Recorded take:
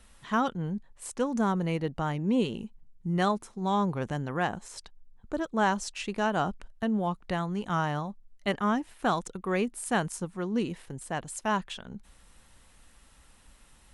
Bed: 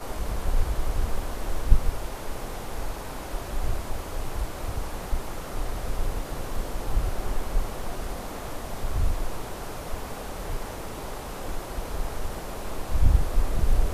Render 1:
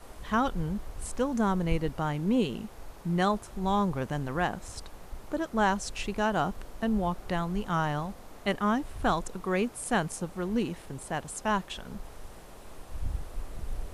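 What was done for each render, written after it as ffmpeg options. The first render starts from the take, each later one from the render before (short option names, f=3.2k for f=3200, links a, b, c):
-filter_complex "[1:a]volume=-14dB[a];[0:a][a]amix=inputs=2:normalize=0"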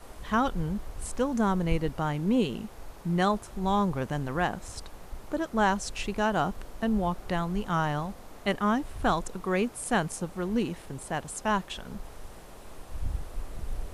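-af "volume=1dB"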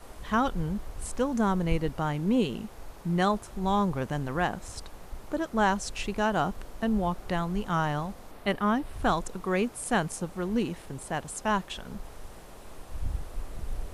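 -filter_complex "[0:a]asettb=1/sr,asplit=3[a][b][c];[a]atrim=end=8.314[d];[b]atrim=start=8.31:end=8.93,asetpts=PTS-STARTPTS,afade=t=in:d=0.004:c=qsin,afade=t=out:st=0.616:d=0.004:c=qsin,equalizer=f=6.8k:w=2.2:g=-7.5[e];[c]atrim=start=8.926[f];[d][e]acrossfade=d=0.004:c1=hsin:c2=qsin[g];[g][f]acrossfade=d=0.004:c1=qsin:c2=hsin"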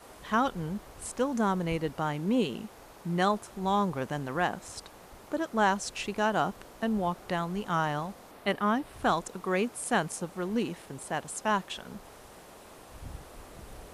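-af "highpass=f=200:p=1"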